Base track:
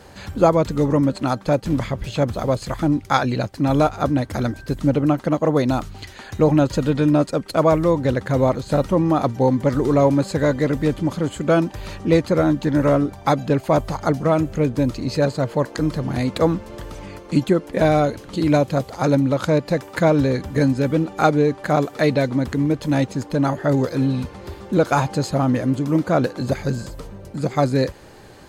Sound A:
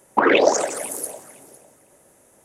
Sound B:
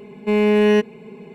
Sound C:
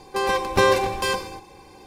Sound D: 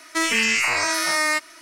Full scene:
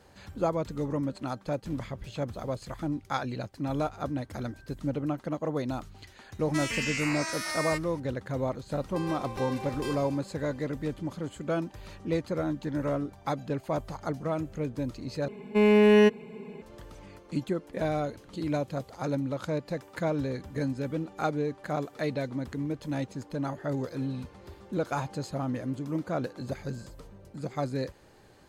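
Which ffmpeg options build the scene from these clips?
-filter_complex "[0:a]volume=0.224[s0];[3:a]acompressor=threshold=0.1:ratio=3:attack=0.24:release=339:knee=1:detection=peak[s1];[s0]asplit=2[s2][s3];[s2]atrim=end=15.284[s4];[2:a]atrim=end=1.34,asetpts=PTS-STARTPTS,volume=0.668[s5];[s3]atrim=start=16.616[s6];[4:a]atrim=end=1.61,asetpts=PTS-STARTPTS,volume=0.251,afade=t=in:d=0.004:c=hsin,afade=t=out:st=1.606:d=0.004:c=hsin,adelay=6390[s7];[s1]atrim=end=1.86,asetpts=PTS-STARTPTS,volume=0.266,afade=t=in:d=0.004:c=hsin,afade=t=out:st=1.856:d=0.004:c=hsin,adelay=8800[s8];[s4][s5]acrossfade=d=0.004:c1=hsin:c2=hsin[s9];[s9][s6]acrossfade=d=0.004:c1=hsin:c2=hsin[s10];[s10][s7][s8]amix=inputs=3:normalize=0"

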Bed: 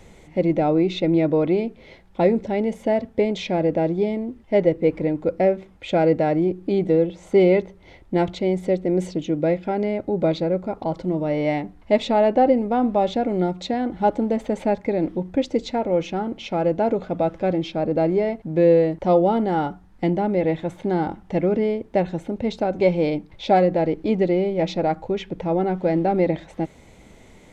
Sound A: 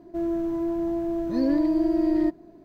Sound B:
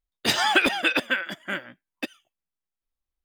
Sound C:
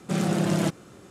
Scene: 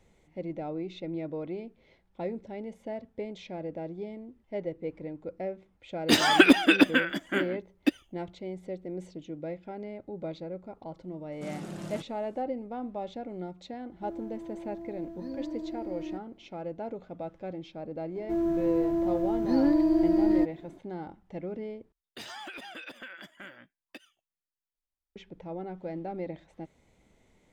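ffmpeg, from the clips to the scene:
-filter_complex "[2:a]asplit=2[s0][s1];[1:a]asplit=2[s2][s3];[0:a]volume=0.15[s4];[s0]equalizer=f=290:w=2.1:g=14[s5];[s1]acompressor=threshold=0.0178:ratio=4:attack=6.7:release=53:knee=1:detection=rms[s6];[s4]asplit=2[s7][s8];[s7]atrim=end=21.924[s9];[s6]atrim=end=3.24,asetpts=PTS-STARTPTS,volume=0.398[s10];[s8]atrim=start=25.156[s11];[s5]atrim=end=3.24,asetpts=PTS-STARTPTS,volume=0.841,afade=t=in:d=0.004:c=hsin,afade=t=out:st=3.236:d=0.004:c=hsin,adelay=5840[s12];[3:a]atrim=end=1.1,asetpts=PTS-STARTPTS,volume=0.168,afade=t=in:d=0.004:c=hsin,afade=t=out:st=1.096:d=0.004:c=hsin,adelay=11320[s13];[s2]atrim=end=2.64,asetpts=PTS-STARTPTS,volume=0.178,afade=t=in:d=0.004:c=hsin,afade=t=out:st=2.636:d=0.004:c=hsin,adelay=13880[s14];[s3]atrim=end=2.64,asetpts=PTS-STARTPTS,volume=0.891,afade=t=in:d=0.004:c=hsin,afade=t=out:st=2.636:d=0.004:c=hsin,adelay=18150[s15];[s9][s10]acrossfade=d=0.004:c1=hsin:c2=hsin[s16];[s16][s11]acrossfade=d=0.004:c1=hsin:c2=hsin[s17];[s17][s12][s13][s14][s15]amix=inputs=5:normalize=0"

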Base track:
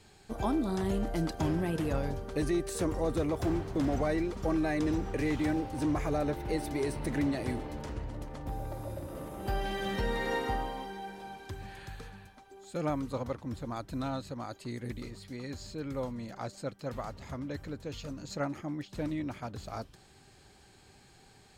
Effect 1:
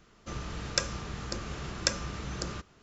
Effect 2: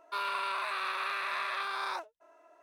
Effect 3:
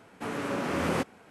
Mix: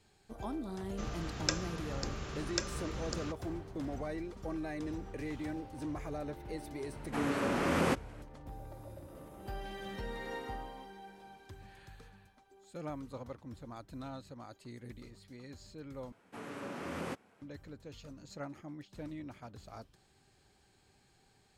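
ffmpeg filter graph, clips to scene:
-filter_complex "[3:a]asplit=2[s0][s1];[0:a]volume=0.335[s2];[1:a]alimiter=limit=0.447:level=0:latency=1:release=157[s3];[s0]aresample=32000,aresample=44100[s4];[s2]asplit=2[s5][s6];[s5]atrim=end=16.124[s7];[s1]atrim=end=1.3,asetpts=PTS-STARTPTS,volume=0.266[s8];[s6]atrim=start=17.416[s9];[s3]atrim=end=2.82,asetpts=PTS-STARTPTS,volume=0.631,afade=t=in:d=0.004:c=hsin,afade=t=out:st=2.816:d=0.004:c=hsin,adelay=710[s10];[s4]atrim=end=1.3,asetpts=PTS-STARTPTS,volume=0.841,afade=t=in:d=0.004:c=hsin,afade=t=out:st=1.296:d=0.004:c=hsin,adelay=6920[s11];[s7][s8]acrossfade=d=0.004:c1=hsin:c2=hsin[s12];[s12][s9]acrossfade=d=0.004:c1=hsin:c2=hsin[s13];[s13][s10][s11]amix=inputs=3:normalize=0"

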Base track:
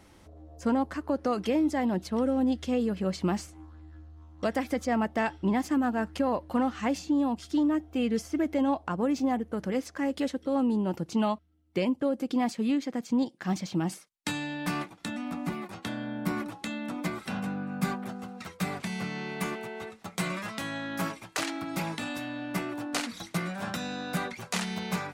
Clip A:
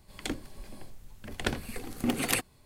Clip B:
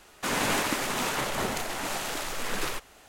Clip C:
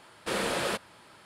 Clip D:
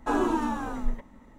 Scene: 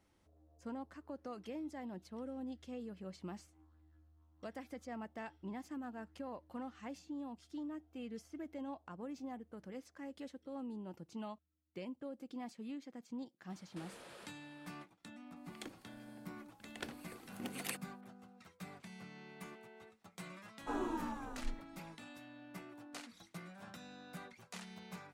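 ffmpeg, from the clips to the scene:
-filter_complex "[0:a]volume=0.119[s0];[3:a]acompressor=threshold=0.0126:ratio=6:attack=3.2:release=140:knee=1:detection=peak[s1];[1:a]highpass=f=260:p=1[s2];[s1]atrim=end=1.25,asetpts=PTS-STARTPTS,volume=0.211,afade=t=in:d=0.004:c=hsin,afade=t=out:st=1.246:d=0.004:c=hsin,adelay=13500[s3];[s2]atrim=end=2.65,asetpts=PTS-STARTPTS,volume=0.211,afade=t=in:d=0.004:c=hsin,afade=t=out:st=2.646:d=0.004:c=hsin,adelay=15360[s4];[4:a]atrim=end=1.38,asetpts=PTS-STARTPTS,volume=0.211,afade=t=in:d=0.1,afade=t=out:st=1.28:d=0.1,adelay=20600[s5];[s0][s3][s4][s5]amix=inputs=4:normalize=0"

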